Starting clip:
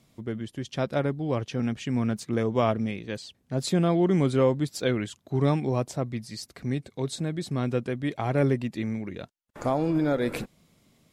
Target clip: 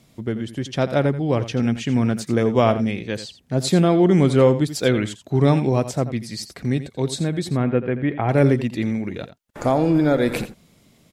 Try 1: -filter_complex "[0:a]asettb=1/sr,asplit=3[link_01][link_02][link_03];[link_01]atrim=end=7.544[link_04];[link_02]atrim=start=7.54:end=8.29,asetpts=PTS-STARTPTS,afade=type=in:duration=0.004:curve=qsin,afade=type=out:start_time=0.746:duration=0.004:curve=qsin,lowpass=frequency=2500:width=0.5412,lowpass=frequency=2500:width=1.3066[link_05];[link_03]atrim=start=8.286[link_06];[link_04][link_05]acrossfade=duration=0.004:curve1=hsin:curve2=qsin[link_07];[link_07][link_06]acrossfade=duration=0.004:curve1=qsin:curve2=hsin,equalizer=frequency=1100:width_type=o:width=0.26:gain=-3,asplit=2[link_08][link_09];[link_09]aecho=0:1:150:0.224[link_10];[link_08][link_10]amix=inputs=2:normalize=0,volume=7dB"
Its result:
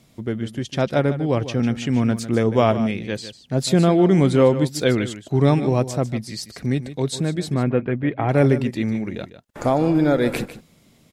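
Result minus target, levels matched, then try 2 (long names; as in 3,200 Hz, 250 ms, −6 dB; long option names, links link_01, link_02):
echo 65 ms late
-filter_complex "[0:a]asettb=1/sr,asplit=3[link_01][link_02][link_03];[link_01]atrim=end=7.544[link_04];[link_02]atrim=start=7.54:end=8.29,asetpts=PTS-STARTPTS,afade=type=in:duration=0.004:curve=qsin,afade=type=out:start_time=0.746:duration=0.004:curve=qsin,lowpass=frequency=2500:width=0.5412,lowpass=frequency=2500:width=1.3066[link_05];[link_03]atrim=start=8.286[link_06];[link_04][link_05]acrossfade=duration=0.004:curve1=hsin:curve2=qsin[link_07];[link_07][link_06]acrossfade=duration=0.004:curve1=qsin:curve2=hsin,equalizer=frequency=1100:width_type=o:width=0.26:gain=-3,asplit=2[link_08][link_09];[link_09]aecho=0:1:85:0.224[link_10];[link_08][link_10]amix=inputs=2:normalize=0,volume=7dB"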